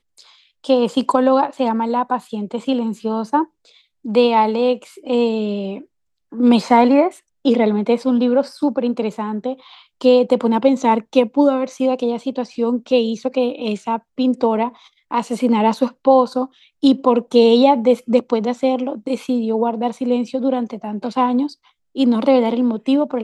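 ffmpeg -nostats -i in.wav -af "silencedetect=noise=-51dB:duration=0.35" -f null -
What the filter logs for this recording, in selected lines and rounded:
silence_start: 5.86
silence_end: 6.32 | silence_duration: 0.46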